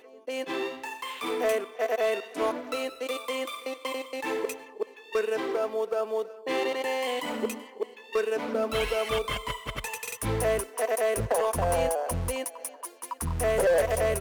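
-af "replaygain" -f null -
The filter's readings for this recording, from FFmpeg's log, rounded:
track_gain = +9.4 dB
track_peak = 0.077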